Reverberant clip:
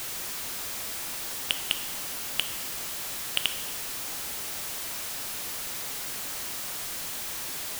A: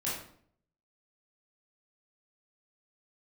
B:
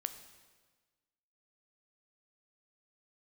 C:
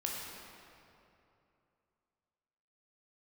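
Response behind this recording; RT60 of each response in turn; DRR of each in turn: B; 0.60 s, 1.4 s, 2.8 s; -8.5 dB, 9.0 dB, -3.0 dB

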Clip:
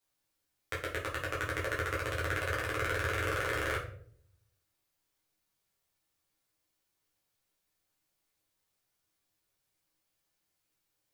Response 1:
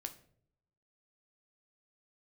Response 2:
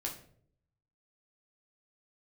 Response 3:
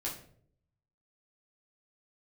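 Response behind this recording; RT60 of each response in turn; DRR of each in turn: 3; 0.65 s, 0.60 s, 0.60 s; 6.5 dB, -1.5 dB, -5.5 dB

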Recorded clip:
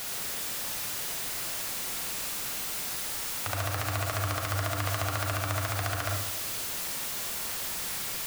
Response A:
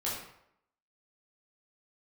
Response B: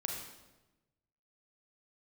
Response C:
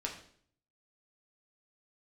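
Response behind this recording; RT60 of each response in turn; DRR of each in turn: B; 0.75 s, 1.1 s, 0.55 s; -7.5 dB, 0.5 dB, -1.0 dB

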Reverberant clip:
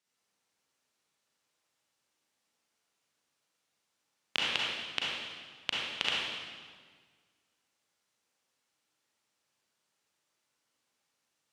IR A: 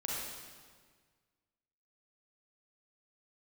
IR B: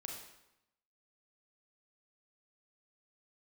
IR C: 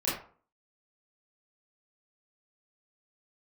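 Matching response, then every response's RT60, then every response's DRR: A; 1.6 s, 0.85 s, 0.45 s; -5.0 dB, 0.0 dB, -9.5 dB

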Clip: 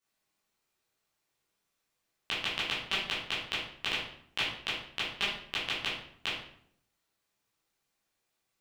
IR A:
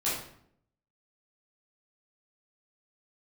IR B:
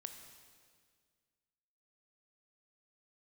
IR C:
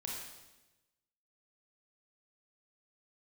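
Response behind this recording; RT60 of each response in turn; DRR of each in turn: A; 0.65 s, 1.9 s, 1.1 s; -10.0 dB, 6.0 dB, -3.0 dB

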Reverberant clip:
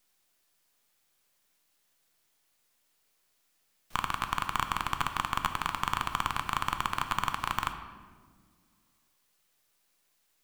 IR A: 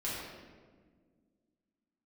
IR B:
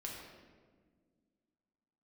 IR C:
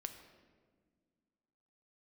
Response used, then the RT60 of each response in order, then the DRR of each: C; 1.6 s, 1.6 s, 1.7 s; -8.5 dB, -2.5 dB, 6.5 dB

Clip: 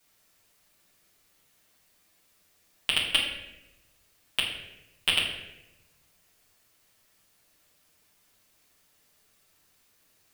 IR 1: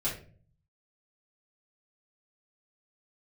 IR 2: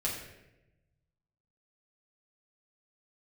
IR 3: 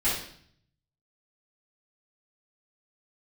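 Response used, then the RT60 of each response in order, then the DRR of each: 2; 0.45 s, 0.95 s, 0.60 s; -9.0 dB, -6.0 dB, -12.5 dB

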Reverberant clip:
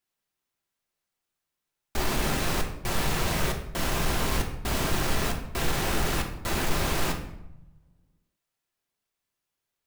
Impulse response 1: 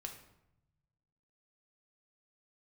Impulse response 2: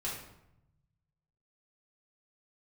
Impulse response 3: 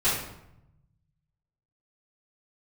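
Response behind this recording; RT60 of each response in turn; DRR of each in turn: 1; 0.85 s, 0.80 s, 0.80 s; 2.5 dB, -7.5 dB, -15.5 dB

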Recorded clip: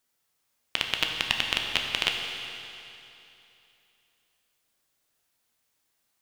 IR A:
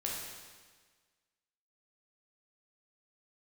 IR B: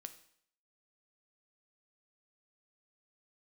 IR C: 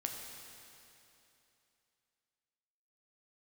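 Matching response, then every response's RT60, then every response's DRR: C; 1.5 s, 0.65 s, 2.9 s; -3.5 dB, 9.0 dB, 1.0 dB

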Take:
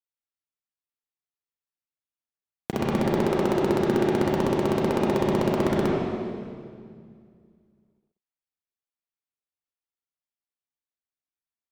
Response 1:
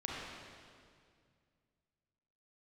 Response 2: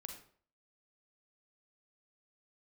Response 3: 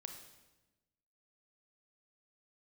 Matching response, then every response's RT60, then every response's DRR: 1; 2.1 s, 0.50 s, 1.1 s; -5.0 dB, 3.0 dB, 4.5 dB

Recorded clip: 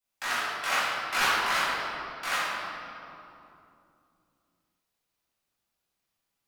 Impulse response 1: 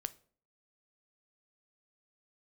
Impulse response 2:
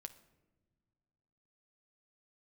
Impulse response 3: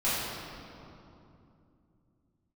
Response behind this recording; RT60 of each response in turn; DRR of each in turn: 3; 0.50 s, no single decay rate, 2.8 s; 13.0 dB, 9.5 dB, -13.0 dB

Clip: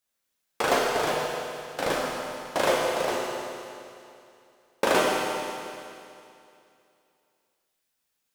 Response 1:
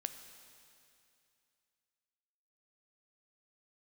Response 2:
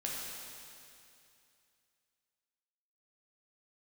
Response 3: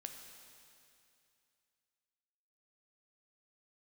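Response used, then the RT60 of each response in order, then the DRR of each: 2; 2.6 s, 2.6 s, 2.6 s; 8.0 dB, -4.5 dB, 4.0 dB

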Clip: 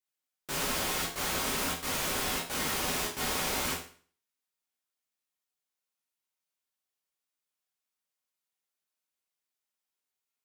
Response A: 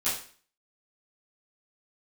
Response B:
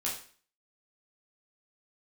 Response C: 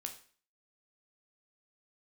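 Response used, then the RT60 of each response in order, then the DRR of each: B; 0.45 s, 0.45 s, 0.45 s; -15.0 dB, -5.5 dB, 4.0 dB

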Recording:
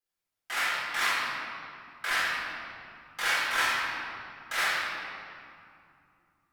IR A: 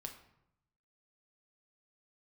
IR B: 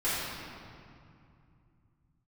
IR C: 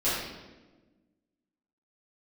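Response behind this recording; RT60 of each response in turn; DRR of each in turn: B; 0.80 s, 2.5 s, 1.2 s; 3.5 dB, -12.0 dB, -13.0 dB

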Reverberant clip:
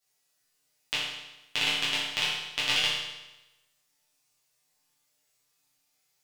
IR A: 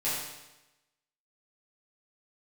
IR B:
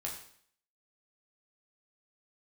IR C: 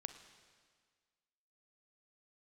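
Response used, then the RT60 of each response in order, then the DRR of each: A; 1.0 s, 0.60 s, 1.7 s; -11.0 dB, -2.0 dB, 8.5 dB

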